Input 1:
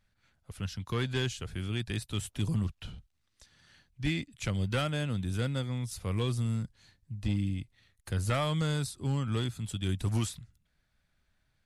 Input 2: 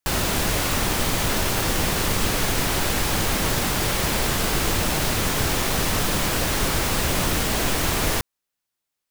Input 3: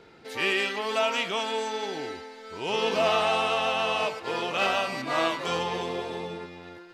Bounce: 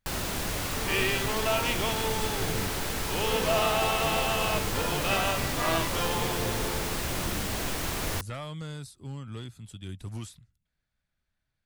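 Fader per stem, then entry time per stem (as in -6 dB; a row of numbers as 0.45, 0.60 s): -8.0, -9.0, -2.5 dB; 0.00, 0.00, 0.50 s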